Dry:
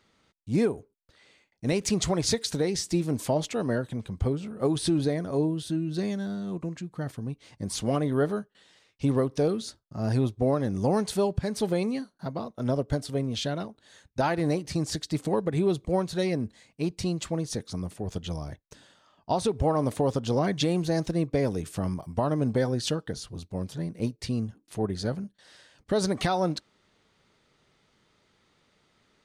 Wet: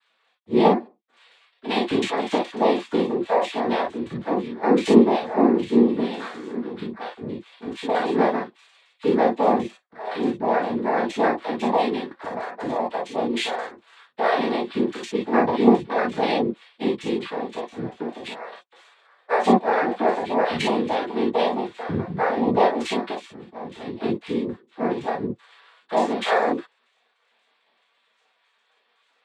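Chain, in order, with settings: sine-wave speech; high shelf 2200 Hz +8 dB; noise vocoder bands 6; non-linear reverb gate 80 ms flat, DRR -4 dB; 12.11–12.76 three-band squash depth 70%

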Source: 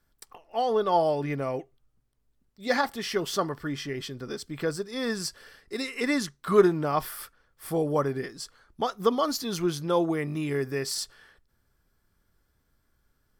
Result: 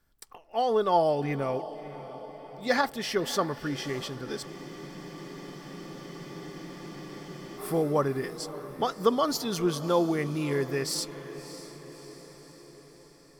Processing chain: diffused feedback echo 0.608 s, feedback 59%, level -14.5 dB; spectral freeze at 4.48, 3.10 s

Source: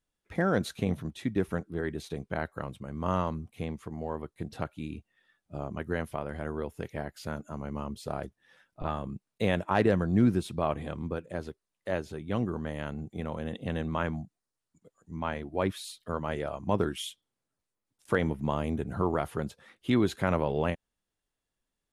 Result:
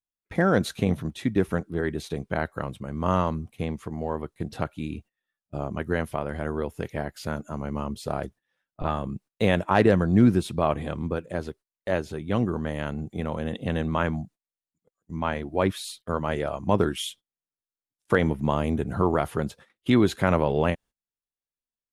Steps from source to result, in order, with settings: gate -51 dBFS, range -22 dB; gain +5.5 dB

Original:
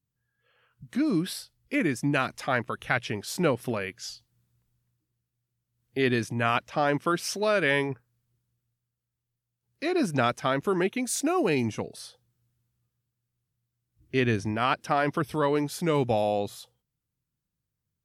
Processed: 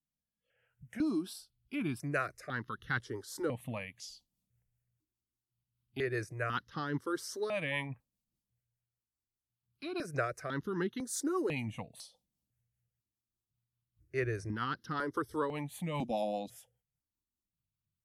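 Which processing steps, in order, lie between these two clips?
rotary speaker horn 0.85 Hz, later 5 Hz, at 2.2; step phaser 2 Hz 410–2400 Hz; gain -4 dB

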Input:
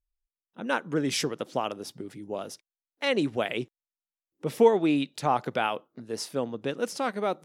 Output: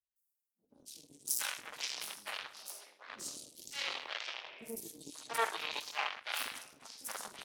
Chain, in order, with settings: reverb RT60 1.2 s, pre-delay 5 ms, DRR -6.5 dB; in parallel at -0.5 dB: limiter -10.5 dBFS, peak gain reduction 10 dB; on the sum: added harmonics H 2 -16 dB, 3 -11 dB, 7 -31 dB, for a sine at 2.5 dBFS; differentiator; reverse; upward compressor, threshold -32 dBFS; reverse; three bands offset in time lows, highs, mids 0.16/0.69 s, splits 380/5500 Hz

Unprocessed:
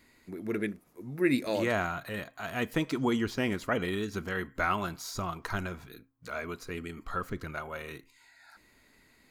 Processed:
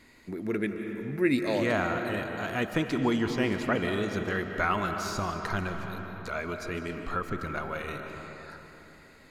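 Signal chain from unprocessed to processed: digital reverb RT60 3.3 s, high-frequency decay 0.5×, pre-delay 0.11 s, DRR 6 dB; in parallel at 0 dB: compressor, threshold -41 dBFS, peak gain reduction 18.5 dB; on the sum: high shelf 12000 Hz -12 dB

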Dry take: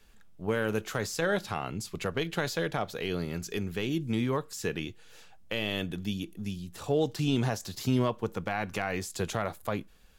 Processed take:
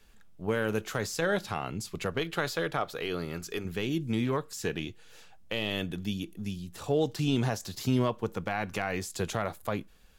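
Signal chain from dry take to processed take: 2.19–3.65 thirty-one-band EQ 100 Hz -9 dB, 200 Hz -9 dB, 1250 Hz +6 dB, 6300 Hz -3 dB; 4.25–5.71 Doppler distortion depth 0.13 ms

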